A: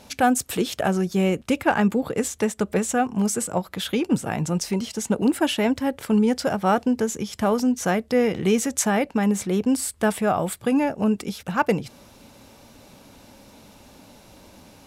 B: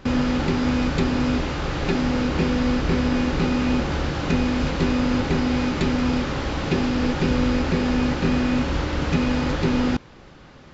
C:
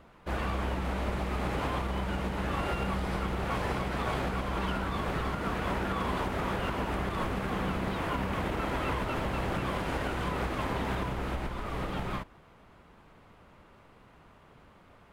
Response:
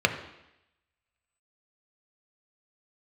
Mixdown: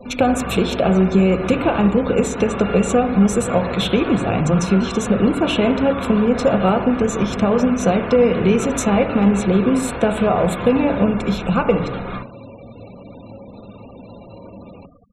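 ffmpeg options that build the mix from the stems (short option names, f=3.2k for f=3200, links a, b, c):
-filter_complex "[0:a]acompressor=threshold=-25dB:ratio=4,equalizer=f=1.7k:w=3.8:g=-13,volume=0.5dB,asplit=2[a][b];[b]volume=-4dB[c];[1:a]alimiter=limit=-14dB:level=0:latency=1,volume=-9.5dB[d];[2:a]highshelf=f=8.9k:g=12,volume=3dB,asplit=2[e][f];[f]volume=-14dB[g];[d][e]amix=inputs=2:normalize=0,aecho=1:1:4.2:0.65,acompressor=threshold=-28dB:ratio=6,volume=0dB[h];[3:a]atrim=start_sample=2205[i];[c][g]amix=inputs=2:normalize=0[j];[j][i]afir=irnorm=-1:irlink=0[k];[a][h][k]amix=inputs=3:normalize=0,afftfilt=real='re*gte(hypot(re,im),0.0158)':imag='im*gte(hypot(re,im),0.0158)':win_size=1024:overlap=0.75,asuperstop=centerf=4700:order=12:qfactor=6.7,highshelf=f=11k:g=-11"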